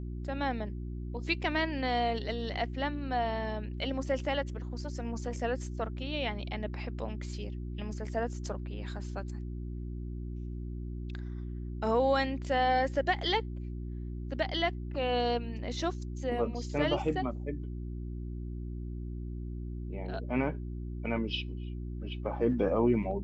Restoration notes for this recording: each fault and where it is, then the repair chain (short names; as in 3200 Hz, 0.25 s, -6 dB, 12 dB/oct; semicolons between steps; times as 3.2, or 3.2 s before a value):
hum 60 Hz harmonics 6 -38 dBFS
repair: de-hum 60 Hz, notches 6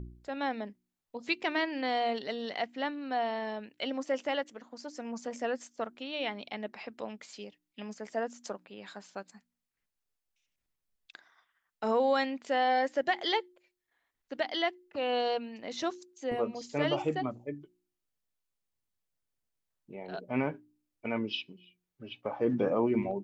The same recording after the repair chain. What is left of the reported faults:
none